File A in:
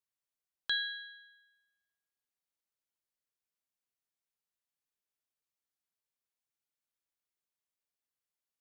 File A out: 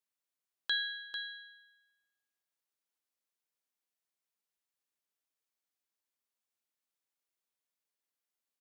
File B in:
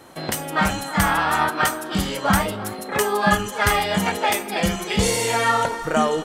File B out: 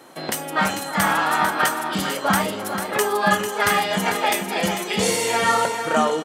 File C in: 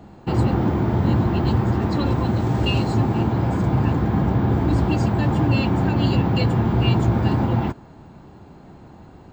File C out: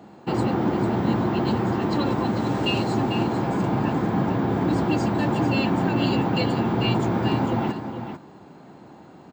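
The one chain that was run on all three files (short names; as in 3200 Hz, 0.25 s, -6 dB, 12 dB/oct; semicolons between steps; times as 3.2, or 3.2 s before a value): HPF 190 Hz 12 dB/oct; on a send: echo 0.446 s -8.5 dB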